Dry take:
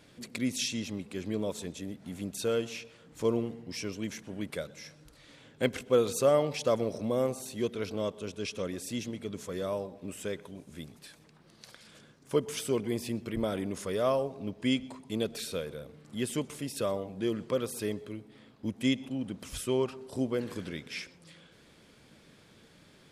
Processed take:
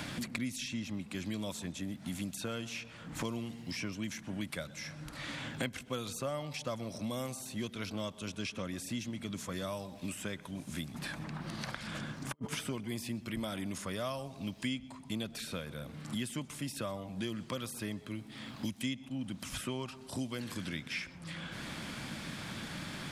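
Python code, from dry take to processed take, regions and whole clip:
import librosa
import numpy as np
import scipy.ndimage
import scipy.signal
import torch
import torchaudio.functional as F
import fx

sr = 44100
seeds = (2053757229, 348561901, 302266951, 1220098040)

y = fx.chain(x, sr, fx.high_shelf(hz=2600.0, db=-11.0),
    fx.over_compress(threshold_db=-44.0, ratio=-0.5), at=(10.94, 12.55))
y = fx.peak_eq(y, sr, hz=440.0, db=-14.0, octaves=0.68)
y = fx.band_squash(y, sr, depth_pct=100)
y = y * 10.0 ** (-2.0 / 20.0)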